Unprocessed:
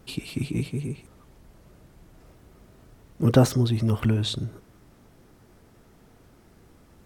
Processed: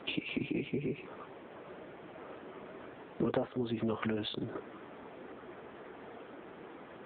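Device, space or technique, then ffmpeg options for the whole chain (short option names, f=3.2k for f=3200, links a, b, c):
voicemail: -filter_complex "[0:a]asettb=1/sr,asplit=3[a][b][c];[a]atrim=end=0.904[d];[b]atrim=start=0.9:end=3.34,asetpts=PTS-STARTPTS,afade=t=in:d=0.004:c=qsin,afade=t=out:st=2.436:d=0.004:c=qsin,lowpass=5.7k[e];[c]atrim=start=3.336[f];[d][e]acrossfade=d=0.004:c1=hsin:c2=qsin[g];[g][f]acrossfade=d=0.004:c1=qsin:c2=hsin,highpass=360,lowpass=3k,acompressor=threshold=-44dB:ratio=8,volume=14dB" -ar 8000 -c:a libopencore_amrnb -b:a 6700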